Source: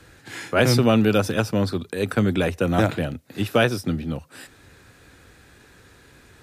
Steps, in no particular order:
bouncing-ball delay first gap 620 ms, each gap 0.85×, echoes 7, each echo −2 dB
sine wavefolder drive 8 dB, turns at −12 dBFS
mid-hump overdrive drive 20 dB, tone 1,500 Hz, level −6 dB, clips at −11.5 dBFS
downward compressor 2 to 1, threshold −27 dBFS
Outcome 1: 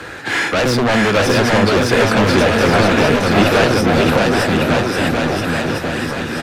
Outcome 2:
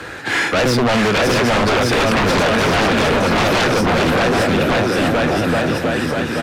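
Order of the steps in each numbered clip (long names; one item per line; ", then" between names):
downward compressor, then mid-hump overdrive, then sine wavefolder, then bouncing-ball delay
downward compressor, then mid-hump overdrive, then bouncing-ball delay, then sine wavefolder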